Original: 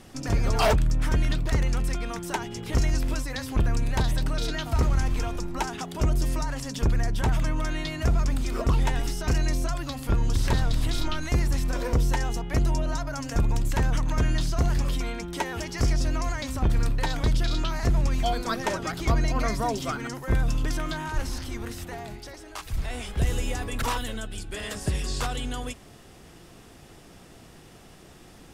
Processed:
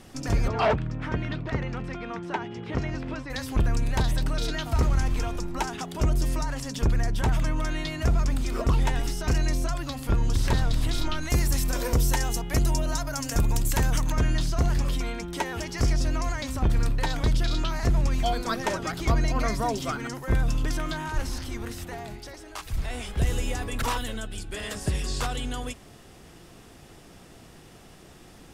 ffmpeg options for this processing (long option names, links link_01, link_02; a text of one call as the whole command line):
ffmpeg -i in.wav -filter_complex "[0:a]asplit=3[link_01][link_02][link_03];[link_01]afade=type=out:start_time=0.47:duration=0.02[link_04];[link_02]highpass=100,lowpass=2700,afade=type=in:start_time=0.47:duration=0.02,afade=type=out:start_time=3.29:duration=0.02[link_05];[link_03]afade=type=in:start_time=3.29:duration=0.02[link_06];[link_04][link_05][link_06]amix=inputs=3:normalize=0,asettb=1/sr,asplit=3[link_07][link_08][link_09];[link_07]atrim=end=11.304[link_10];[link_08]atrim=start=11.3:end=14.12,asetpts=PTS-STARTPTS,afade=type=in:duration=0.004:curve=qsin,afade=type=out:start_time=2.816:duration=0.004:curve=qsin,aemphasis=mode=production:type=50kf[link_11];[link_09]atrim=start=14.116[link_12];[link_10][link_11]acrossfade=duration=0.004:curve1=hsin:curve2=qsin[link_13];[link_13][link_12]acrossfade=duration=0.004:curve1=qsin:curve2=hsin" out.wav